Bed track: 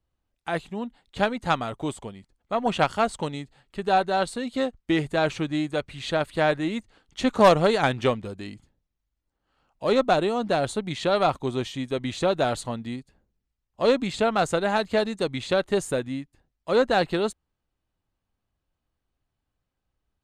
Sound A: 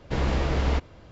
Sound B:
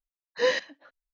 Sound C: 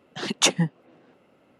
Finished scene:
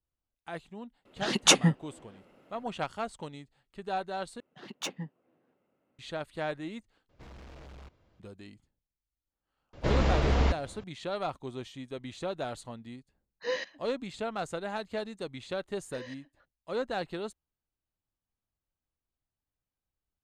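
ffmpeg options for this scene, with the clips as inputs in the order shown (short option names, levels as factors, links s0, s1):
-filter_complex "[3:a]asplit=2[s0][s1];[1:a]asplit=2[s2][s3];[2:a]asplit=2[s4][s5];[0:a]volume=0.251[s6];[s1]adynamicsmooth=sensitivity=1.5:basefreq=3400[s7];[s2]asoftclip=type=hard:threshold=0.0355[s8];[s5]alimiter=limit=0.0708:level=0:latency=1:release=382[s9];[s6]asplit=3[s10][s11][s12];[s10]atrim=end=4.404[s13];[s7]atrim=end=1.59,asetpts=PTS-STARTPTS,volume=0.158[s14];[s11]atrim=start=5.986:end=7.094[s15];[s8]atrim=end=1.11,asetpts=PTS-STARTPTS,volume=0.126[s16];[s12]atrim=start=8.196[s17];[s0]atrim=end=1.59,asetpts=PTS-STARTPTS,volume=0.944,afade=t=in:d=0.004:c=hsin,afade=t=out:st=1.586:d=0.004:c=hsin,adelay=1050[s18];[s3]atrim=end=1.11,asetpts=PTS-STARTPTS,volume=0.891,afade=t=in:d=0.004:c=hsin,afade=t=out:st=1.106:d=0.004:c=hsin,adelay=9730[s19];[s4]atrim=end=1.13,asetpts=PTS-STARTPTS,volume=0.376,afade=t=in:d=0.004:c=hsin,afade=t=out:st=1.126:d=0.004:c=hsin,adelay=13050[s20];[s9]atrim=end=1.13,asetpts=PTS-STARTPTS,volume=0.237,afade=t=in:d=0.004:c=hsin,afade=t=out:st=1.126:d=0.004:c=hsin,adelay=15550[s21];[s13][s14]acrossfade=d=0.004:c1=hsin:c2=hsin[s22];[s22][s15]acrossfade=d=0.004:c1=hsin:c2=hsin[s23];[s23][s16]acrossfade=d=0.004:c1=hsin:c2=hsin[s24];[s24][s17]acrossfade=d=0.004:c1=hsin:c2=hsin[s25];[s25][s18][s19][s20][s21]amix=inputs=5:normalize=0"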